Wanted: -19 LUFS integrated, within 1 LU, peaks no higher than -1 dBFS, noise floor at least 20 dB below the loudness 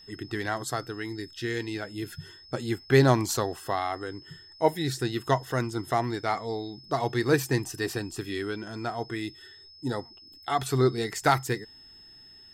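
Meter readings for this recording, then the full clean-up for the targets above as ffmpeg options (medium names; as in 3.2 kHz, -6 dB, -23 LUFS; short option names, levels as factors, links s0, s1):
steady tone 5.2 kHz; tone level -49 dBFS; loudness -29.0 LUFS; peak level -8.0 dBFS; loudness target -19.0 LUFS
-> -af "bandreject=f=5200:w=30"
-af "volume=3.16,alimiter=limit=0.891:level=0:latency=1"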